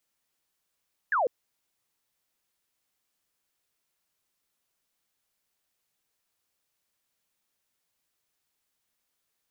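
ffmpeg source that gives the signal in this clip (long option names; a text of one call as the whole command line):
ffmpeg -f lavfi -i "aevalsrc='0.0794*clip(t/0.002,0,1)*clip((0.15-t)/0.002,0,1)*sin(2*PI*1800*0.15/log(450/1800)*(exp(log(450/1800)*t/0.15)-1))':duration=0.15:sample_rate=44100" out.wav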